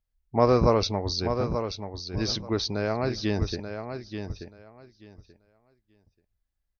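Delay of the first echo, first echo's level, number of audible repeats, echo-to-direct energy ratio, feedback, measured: 0.883 s, -8.0 dB, 2, -8.0 dB, 18%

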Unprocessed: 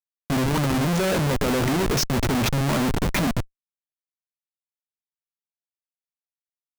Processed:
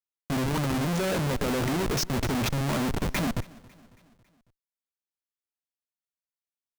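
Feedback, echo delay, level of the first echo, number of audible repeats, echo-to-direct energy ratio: 54%, 0.275 s, -23.0 dB, 3, -21.5 dB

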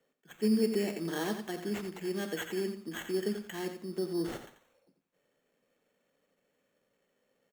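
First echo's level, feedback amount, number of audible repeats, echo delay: -9.0 dB, 22%, 2, 88 ms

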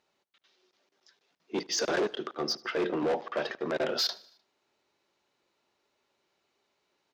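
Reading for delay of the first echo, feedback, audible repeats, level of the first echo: 76 ms, 59%, 3, -23.5 dB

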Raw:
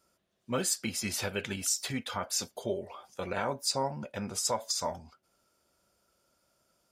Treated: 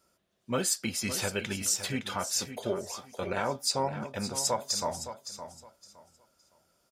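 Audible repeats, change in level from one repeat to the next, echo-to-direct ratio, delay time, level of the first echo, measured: 2, -13.0 dB, -11.0 dB, 0.564 s, -11.0 dB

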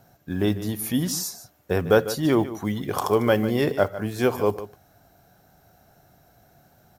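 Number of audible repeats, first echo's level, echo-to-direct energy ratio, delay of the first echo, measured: 1, -14.0 dB, -14.0 dB, 0.149 s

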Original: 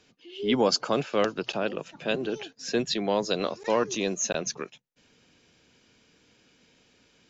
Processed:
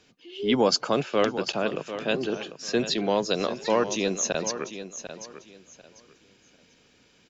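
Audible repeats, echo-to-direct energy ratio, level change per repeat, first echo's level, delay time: 2, -11.5 dB, -13.0 dB, -11.5 dB, 0.745 s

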